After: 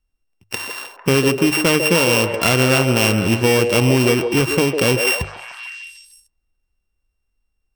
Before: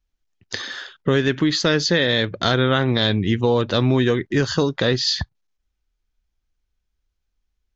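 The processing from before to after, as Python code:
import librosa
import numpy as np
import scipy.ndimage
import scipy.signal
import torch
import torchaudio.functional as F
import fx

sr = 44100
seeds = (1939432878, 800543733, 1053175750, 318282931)

y = np.r_[np.sort(x[:len(x) // 16 * 16].reshape(-1, 16), axis=1).ravel(), x[len(x) // 16 * 16:]]
y = fx.hum_notches(y, sr, base_hz=50, count=3)
y = fx.echo_stepped(y, sr, ms=150, hz=470.0, octaves=0.7, feedback_pct=70, wet_db=-3)
y = y * 10.0 ** (2.5 / 20.0)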